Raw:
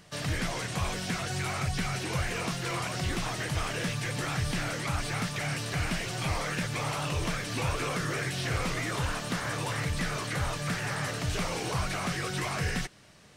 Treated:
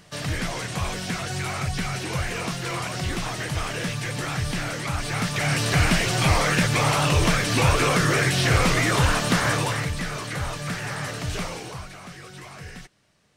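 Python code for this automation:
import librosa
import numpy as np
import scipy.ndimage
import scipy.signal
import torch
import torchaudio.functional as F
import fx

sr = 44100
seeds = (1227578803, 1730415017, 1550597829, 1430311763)

y = fx.gain(x, sr, db=fx.line((4.99, 3.5), (5.67, 11.0), (9.49, 11.0), (9.97, 2.0), (11.41, 2.0), (11.93, -9.0)))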